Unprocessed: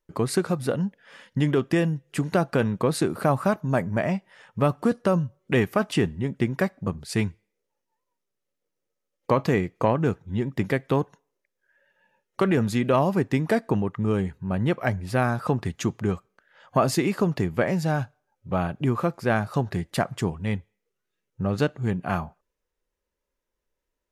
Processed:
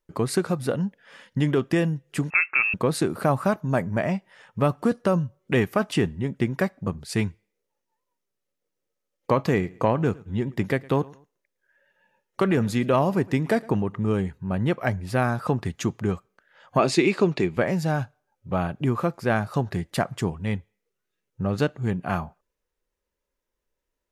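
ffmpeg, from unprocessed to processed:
-filter_complex "[0:a]asettb=1/sr,asplit=3[a][b][c];[a]atrim=end=2.304[d];[b]atrim=start=2.3:end=2.74,asetpts=PTS-STARTPTS,afade=t=in:d=0.004:c=qsin,afade=t=out:st=0.436:d=0.004:c=qsin,lowpass=f=2.4k:t=q:w=0.5098,lowpass=f=2.4k:t=q:w=0.6013,lowpass=f=2.4k:t=q:w=0.9,lowpass=f=2.4k:t=q:w=2.563,afreqshift=-2800[e];[c]atrim=start=2.736[f];[d][e]acrossfade=d=0.004:c1=hsin:c2=qsin[g];[g][f]acrossfade=d=0.004:c1=qsin:c2=hsin,asettb=1/sr,asplit=3[h][i][j];[h]atrim=end=9.364[k];[i]atrim=start=9.36:end=14.14,asetpts=PTS-STARTPTS,afade=t=in:d=0.004:c=qsin,afade=t=out:st=4.776:d=0.004:c=qsin,aecho=1:1:111|222:0.0708|0.0219,atrim=end_sample=210798[l];[j]atrim=start=14.136[m];[k][l]acrossfade=d=0.004:c1=hsin:c2=qsin[n];[n][m]acrossfade=d=0.004:c1=qsin:c2=hsin,asettb=1/sr,asplit=3[o][p][q];[o]atrim=end=16.794[r];[p]atrim=start=16.79:end=17.57,asetpts=PTS-STARTPTS,afade=t=in:d=0.004:c=qsin,afade=t=out:st=0.776:d=0.004:c=qsin,highpass=100,equalizer=f=110:t=q:w=4:g=-7,equalizer=f=370:t=q:w=4:g=7,equalizer=f=2.4k:t=q:w=4:g=10,equalizer=f=3.9k:t=q:w=4:g=8,lowpass=f=9k:w=0.5412,lowpass=f=9k:w=1.3066[s];[q]atrim=start=17.566[t];[r][s]acrossfade=d=0.004:c1=hsin:c2=qsin[u];[u][t]acrossfade=d=0.004:c1=qsin:c2=hsin"

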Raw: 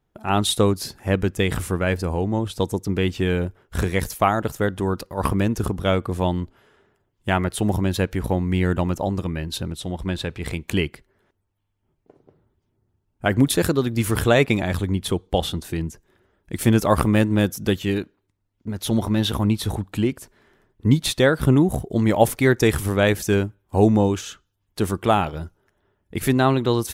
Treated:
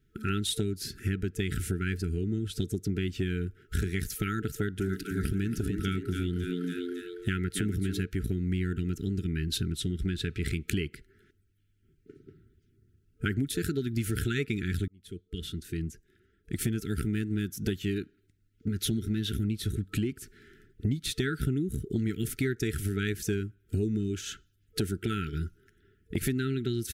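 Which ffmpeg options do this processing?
-filter_complex "[0:a]asplit=3[a][b][c];[a]afade=t=out:st=4.8:d=0.02[d];[b]asplit=7[e][f][g][h][i][j][k];[f]adelay=277,afreqshift=87,volume=-9dB[l];[g]adelay=554,afreqshift=174,volume=-14.5dB[m];[h]adelay=831,afreqshift=261,volume=-20dB[n];[i]adelay=1108,afreqshift=348,volume=-25.5dB[o];[j]adelay=1385,afreqshift=435,volume=-31.1dB[p];[k]adelay=1662,afreqshift=522,volume=-36.6dB[q];[e][l][m][n][o][p][q]amix=inputs=7:normalize=0,afade=t=in:st=4.8:d=0.02,afade=t=out:st=8.02:d=0.02[r];[c]afade=t=in:st=8.02:d=0.02[s];[d][r][s]amix=inputs=3:normalize=0,asplit=2[t][u];[t]atrim=end=14.88,asetpts=PTS-STARTPTS,afade=t=out:st=14.876:d=0.004:c=hsin[v];[u]atrim=start=14.88,asetpts=PTS-STARTPTS,afade=t=in:d=3.12[w];[v][w]concat=n=2:v=0:a=1,afftfilt=real='re*(1-between(b*sr/4096,450,1300))':imag='im*(1-between(b*sr/4096,450,1300))':win_size=4096:overlap=0.75,lowshelf=f=210:g=3,acompressor=threshold=-30dB:ratio=6,volume=2.5dB"

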